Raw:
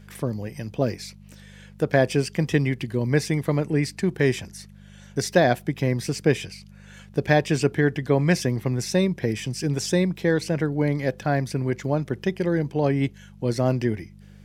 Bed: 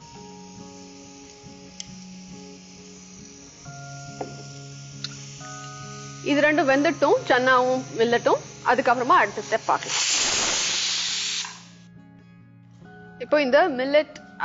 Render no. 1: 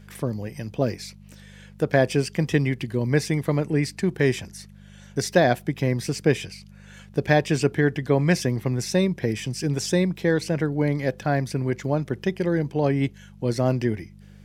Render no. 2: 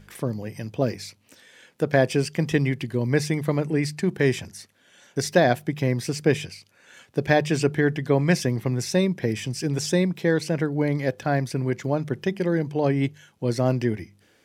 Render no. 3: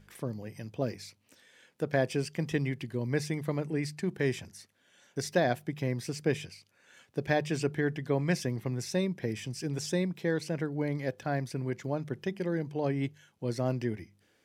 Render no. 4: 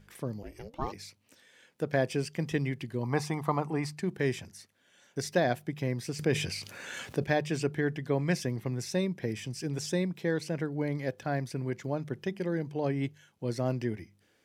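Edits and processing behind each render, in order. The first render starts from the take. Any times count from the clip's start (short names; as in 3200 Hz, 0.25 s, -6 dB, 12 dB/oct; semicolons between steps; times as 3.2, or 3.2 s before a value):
nothing audible
de-hum 50 Hz, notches 4
gain -8.5 dB
0.42–0.91 ring modulator 130 Hz -> 720 Hz; 3.03–3.93 band shelf 950 Hz +14.5 dB 1 oct; 6.19–7.24 fast leveller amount 50%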